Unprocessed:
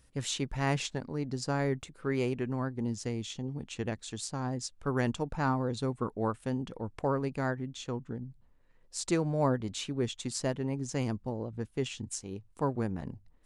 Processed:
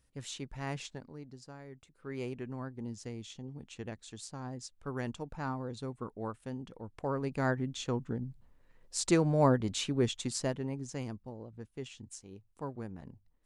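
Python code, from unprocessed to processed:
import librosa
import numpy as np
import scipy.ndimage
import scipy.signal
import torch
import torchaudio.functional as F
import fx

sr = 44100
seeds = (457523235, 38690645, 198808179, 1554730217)

y = fx.gain(x, sr, db=fx.line((0.94, -8.5), (1.65, -20.0), (2.23, -7.5), (6.9, -7.5), (7.54, 2.5), (10.06, 2.5), (11.28, -9.5)))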